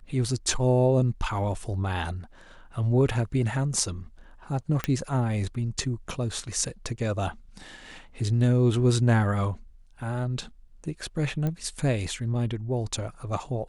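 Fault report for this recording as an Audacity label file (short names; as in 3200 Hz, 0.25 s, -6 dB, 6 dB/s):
4.840000	4.840000	pop -12 dBFS
11.470000	11.470000	pop -18 dBFS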